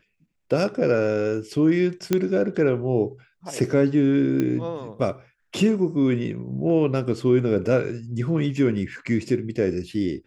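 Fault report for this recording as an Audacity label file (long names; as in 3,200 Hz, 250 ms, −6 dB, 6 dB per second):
2.130000	2.130000	click −7 dBFS
4.400000	4.400000	click −13 dBFS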